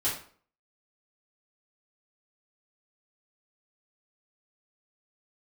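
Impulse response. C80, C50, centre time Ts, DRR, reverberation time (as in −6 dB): 10.5 dB, 5.5 dB, 33 ms, −9.5 dB, 0.50 s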